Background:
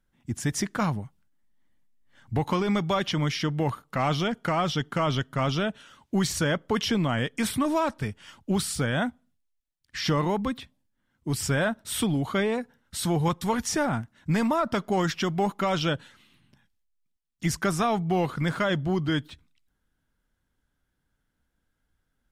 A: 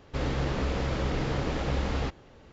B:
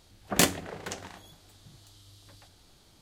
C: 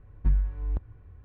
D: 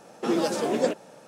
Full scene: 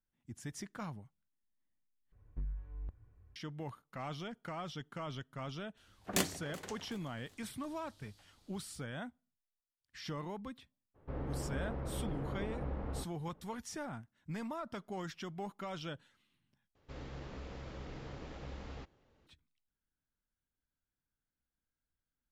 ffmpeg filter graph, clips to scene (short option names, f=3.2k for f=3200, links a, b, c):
-filter_complex "[1:a]asplit=2[a][b];[0:a]volume=-17dB[c];[3:a]asoftclip=type=tanh:threshold=-20.5dB[d];[2:a]aecho=1:1:377|754|1131:0.0891|0.0348|0.0136[e];[a]lowpass=1.2k[f];[c]asplit=3[g][h][i];[g]atrim=end=2.124[j];[d]atrim=end=1.24,asetpts=PTS-STARTPTS,volume=-13dB[k];[h]atrim=start=3.356:end=16.754[l];[b]atrim=end=2.52,asetpts=PTS-STARTPTS,volume=-17.5dB[m];[i]atrim=start=19.266[n];[e]atrim=end=3.01,asetpts=PTS-STARTPTS,volume=-10.5dB,afade=t=in:d=0.004:c=hsin,afade=t=out:st=3.006:d=0.004:c=hsin,adelay=254457S[o];[f]atrim=end=2.52,asetpts=PTS-STARTPTS,volume=-10.5dB,afade=t=in:d=0.02,afade=t=out:st=2.5:d=0.02,adelay=10940[p];[j][k]acrossfade=d=0.004:c1=hsin:c2=hsin[q];[q][l]acrossfade=d=0.004:c1=hsin:c2=hsin[r];[r][m]acrossfade=d=0.004:c1=hsin:c2=hsin[s];[s][n]acrossfade=d=0.004:c1=hsin:c2=hsin[t];[t][o][p]amix=inputs=3:normalize=0"